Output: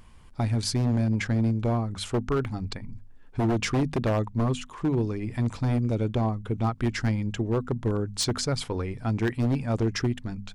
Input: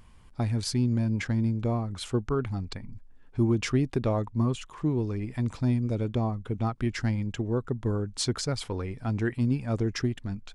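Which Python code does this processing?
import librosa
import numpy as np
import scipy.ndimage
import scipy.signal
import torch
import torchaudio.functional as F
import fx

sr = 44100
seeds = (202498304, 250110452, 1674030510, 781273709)

y = fx.hum_notches(x, sr, base_hz=50, count=5)
y = 10.0 ** (-21.0 / 20.0) * (np.abs((y / 10.0 ** (-21.0 / 20.0) + 3.0) % 4.0 - 2.0) - 1.0)
y = F.gain(torch.from_numpy(y), 3.0).numpy()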